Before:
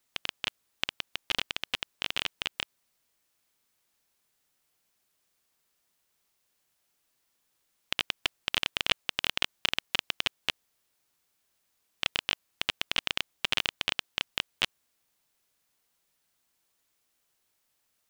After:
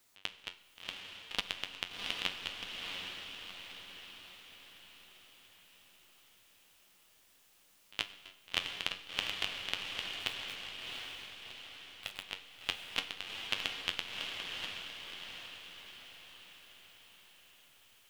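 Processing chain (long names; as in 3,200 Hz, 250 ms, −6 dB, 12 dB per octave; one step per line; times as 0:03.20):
in parallel at −0.5 dB: brickwall limiter −10 dBFS, peak gain reduction 7.5 dB
on the sum: flanger 0.75 Hz, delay 9.8 ms, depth 1.7 ms, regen +61%
volume swells 262 ms
0:10.13–0:12.23: bit-depth reduction 8 bits, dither none
on a send: feedback delay with all-pass diffusion 715 ms, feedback 53%, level −3 dB
on the sum: four-comb reverb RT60 1.4 s, combs from 32 ms, DRR 14.5 dB
level +5 dB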